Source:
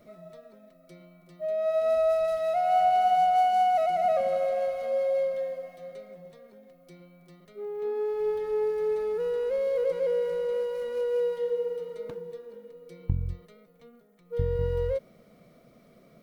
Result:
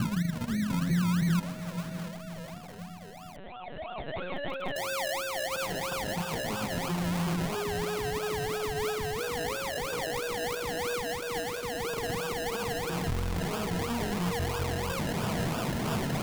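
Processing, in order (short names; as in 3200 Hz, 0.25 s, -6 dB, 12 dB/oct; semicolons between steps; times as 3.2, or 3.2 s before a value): infinite clipping; low-pass sweep 210 Hz -> 1100 Hz, 2.96–6.07; limiter -27 dBFS, peak gain reduction 8.5 dB; bell 120 Hz +11 dB 0.93 oct; diffused feedback echo 0.607 s, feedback 53%, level -12 dB; decimation with a swept rate 30×, swing 60% 3 Hz; 3.36–4.76 LPC vocoder at 8 kHz pitch kept; dynamic EQ 540 Hz, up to -7 dB, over -44 dBFS, Q 4.4; lo-fi delay 0.686 s, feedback 35%, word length 6-bit, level -11 dB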